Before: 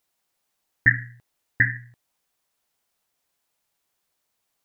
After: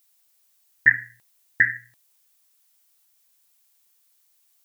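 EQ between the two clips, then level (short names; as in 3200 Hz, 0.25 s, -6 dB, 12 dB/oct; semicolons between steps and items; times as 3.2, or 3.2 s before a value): tilt +4 dB/oct; -1.5 dB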